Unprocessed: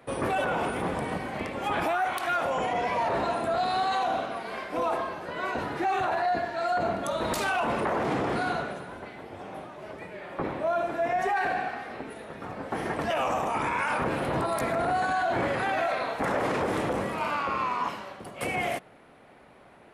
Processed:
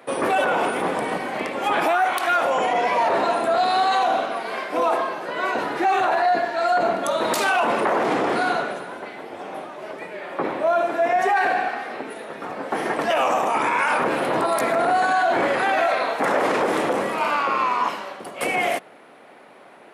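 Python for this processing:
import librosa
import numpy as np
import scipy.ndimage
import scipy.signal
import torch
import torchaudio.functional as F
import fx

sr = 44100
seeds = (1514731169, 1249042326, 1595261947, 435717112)

y = scipy.signal.sosfilt(scipy.signal.butter(2, 270.0, 'highpass', fs=sr, output='sos'), x)
y = y * 10.0 ** (7.5 / 20.0)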